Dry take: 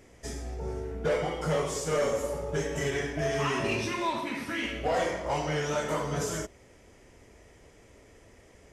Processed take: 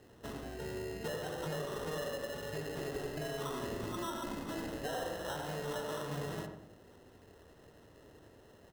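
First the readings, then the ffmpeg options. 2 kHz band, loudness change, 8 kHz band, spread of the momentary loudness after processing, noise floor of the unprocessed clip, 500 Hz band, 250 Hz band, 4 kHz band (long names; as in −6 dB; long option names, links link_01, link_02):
−10.5 dB, −9.5 dB, −10.5 dB, 20 LU, −56 dBFS, −9.5 dB, −7.5 dB, −7.5 dB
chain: -filter_complex "[0:a]highpass=87,acompressor=threshold=-34dB:ratio=6,acrusher=samples=19:mix=1:aa=0.000001,asplit=2[link_01][link_02];[link_02]adelay=91,lowpass=frequency=1200:poles=1,volume=-4dB,asplit=2[link_03][link_04];[link_04]adelay=91,lowpass=frequency=1200:poles=1,volume=0.48,asplit=2[link_05][link_06];[link_06]adelay=91,lowpass=frequency=1200:poles=1,volume=0.48,asplit=2[link_07][link_08];[link_08]adelay=91,lowpass=frequency=1200:poles=1,volume=0.48,asplit=2[link_09][link_10];[link_10]adelay=91,lowpass=frequency=1200:poles=1,volume=0.48,asplit=2[link_11][link_12];[link_12]adelay=91,lowpass=frequency=1200:poles=1,volume=0.48[link_13];[link_01][link_03][link_05][link_07][link_09][link_11][link_13]amix=inputs=7:normalize=0,volume=-3.5dB"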